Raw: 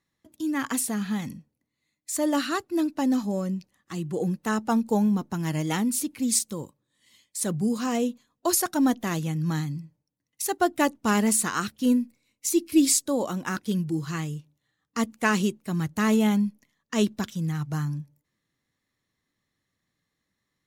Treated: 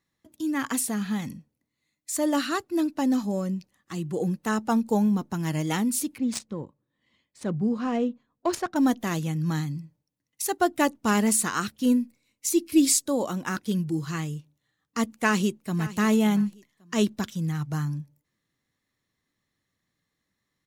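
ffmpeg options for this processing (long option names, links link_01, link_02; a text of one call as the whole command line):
ffmpeg -i in.wav -filter_complex "[0:a]asettb=1/sr,asplit=3[link_01][link_02][link_03];[link_01]atrim=end=6.184[link_04];[link_02]atrim=start=6.18:end=8.76,asetpts=PTS-STARTPTS,afade=type=in:duration=0.004:curve=qsin,afade=type=out:start_time=2.576:duration=0.004:curve=qsin,adynamicsmooth=sensitivity=1.5:basefreq=2000[link_05];[link_03]atrim=start=8.756[link_06];[link_04][link_05]acrossfade=duration=0.004:curve1=hsin:curve2=qsin[link_07];[link_07][link_06]acrossfade=duration=0.004:curve1=qsin:curve2=hsin,asplit=2[link_08][link_09];[link_09]afade=type=in:start_time=15.16:duration=0.01,afade=type=out:start_time=15.97:duration=0.01,aecho=0:1:560|1120:0.158489|0.0396223[link_10];[link_08][link_10]amix=inputs=2:normalize=0" out.wav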